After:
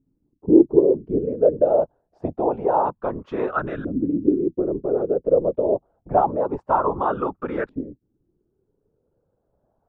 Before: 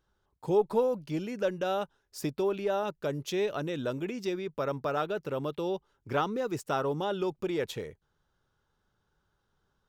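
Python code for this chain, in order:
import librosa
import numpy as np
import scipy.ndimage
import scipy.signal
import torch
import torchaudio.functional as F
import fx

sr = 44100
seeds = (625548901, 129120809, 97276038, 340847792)

y = fx.whisperise(x, sr, seeds[0])
y = fx.filter_lfo_lowpass(y, sr, shape='saw_up', hz=0.26, low_hz=260.0, high_hz=1500.0, q=4.8)
y = F.gain(torch.from_numpy(y), 4.0).numpy()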